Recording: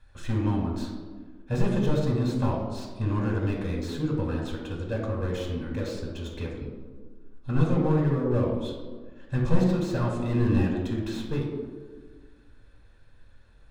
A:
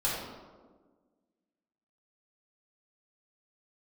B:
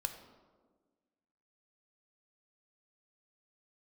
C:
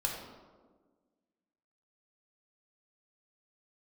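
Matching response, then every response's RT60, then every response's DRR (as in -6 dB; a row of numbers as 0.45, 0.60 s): C; 1.5, 1.5, 1.5 s; -8.0, 6.5, -1.0 dB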